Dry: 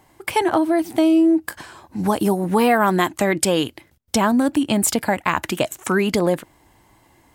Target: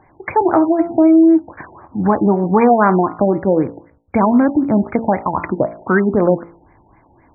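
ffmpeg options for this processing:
ffmpeg -i in.wav -af "bandreject=frequency=56.74:width_type=h:width=4,bandreject=frequency=113.48:width_type=h:width=4,bandreject=frequency=170.22:width_type=h:width=4,bandreject=frequency=226.96:width_type=h:width=4,bandreject=frequency=283.7:width_type=h:width=4,bandreject=frequency=340.44:width_type=h:width=4,bandreject=frequency=397.18:width_type=h:width=4,bandreject=frequency=453.92:width_type=h:width=4,bandreject=frequency=510.66:width_type=h:width=4,bandreject=frequency=567.4:width_type=h:width=4,bandreject=frequency=624.14:width_type=h:width=4,bandreject=frequency=680.88:width_type=h:width=4,bandreject=frequency=737.62:width_type=h:width=4,bandreject=frequency=794.36:width_type=h:width=4,bandreject=frequency=851.1:width_type=h:width=4,bandreject=frequency=907.84:width_type=h:width=4,bandreject=frequency=964.58:width_type=h:width=4,bandreject=frequency=1021.32:width_type=h:width=4,bandreject=frequency=1078.06:width_type=h:width=4,bandreject=frequency=1134.8:width_type=h:width=4,bandreject=frequency=1191.54:width_type=h:width=4,bandreject=frequency=1248.28:width_type=h:width=4,bandreject=frequency=1305.02:width_type=h:width=4,bandreject=frequency=1361.76:width_type=h:width=4,bandreject=frequency=1418.5:width_type=h:width=4,afftfilt=real='re*lt(b*sr/1024,910*pow(2500/910,0.5+0.5*sin(2*PI*3.9*pts/sr)))':imag='im*lt(b*sr/1024,910*pow(2500/910,0.5+0.5*sin(2*PI*3.9*pts/sr)))':win_size=1024:overlap=0.75,volume=5.5dB" out.wav

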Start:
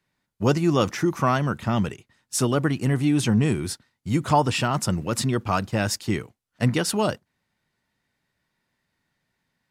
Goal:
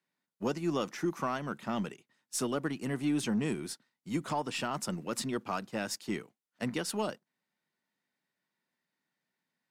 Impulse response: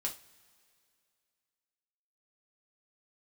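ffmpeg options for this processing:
-af "highpass=frequency=170:width=0.5412,highpass=frequency=170:width=1.3066,alimiter=limit=-12.5dB:level=0:latency=1:release=295,aeval=exprs='0.237*(cos(1*acos(clip(val(0)/0.237,-1,1)))-cos(1*PI/2))+0.00422*(cos(7*acos(clip(val(0)/0.237,-1,1)))-cos(7*PI/2))+0.00237*(cos(8*acos(clip(val(0)/0.237,-1,1)))-cos(8*PI/2))':channel_layout=same,volume=-8.5dB"

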